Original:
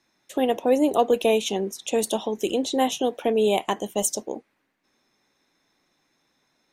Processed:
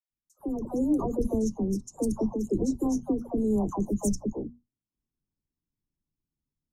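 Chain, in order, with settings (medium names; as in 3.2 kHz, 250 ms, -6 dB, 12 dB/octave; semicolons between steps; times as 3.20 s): elliptic band-stop 1.1–5.5 kHz, stop band 40 dB; hum notches 60/120/180/240 Hz; gate with hold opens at -40 dBFS; tilt EQ -4.5 dB/octave; harmonic-percussive split percussive +7 dB; amplifier tone stack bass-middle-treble 6-0-2; level rider gain up to 11 dB; phase dispersion lows, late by 102 ms, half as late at 790 Hz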